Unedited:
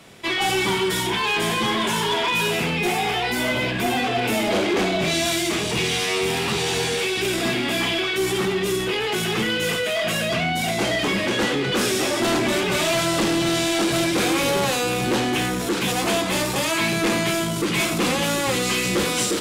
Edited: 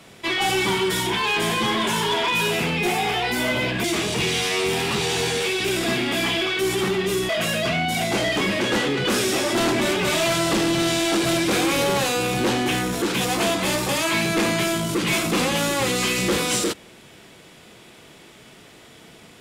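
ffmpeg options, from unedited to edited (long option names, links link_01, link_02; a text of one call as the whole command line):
ffmpeg -i in.wav -filter_complex "[0:a]asplit=3[link_01][link_02][link_03];[link_01]atrim=end=3.842[link_04];[link_02]atrim=start=5.408:end=8.862[link_05];[link_03]atrim=start=9.958[link_06];[link_04][link_05]acrossfade=duration=0.004:curve1=hsin:curve2=hsin[link_07];[link_07][link_06]acrossfade=duration=0.004:curve1=hsin:curve2=hsin" out.wav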